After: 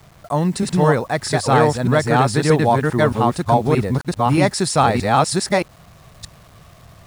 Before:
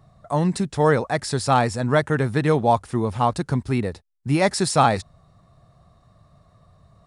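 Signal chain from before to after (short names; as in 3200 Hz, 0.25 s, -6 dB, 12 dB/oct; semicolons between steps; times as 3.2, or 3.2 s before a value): reverse delay 0.625 s, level 0 dB; in parallel at -2 dB: compressor, threshold -27 dBFS, peak gain reduction 15 dB; on the sum: bit-crush 8-bit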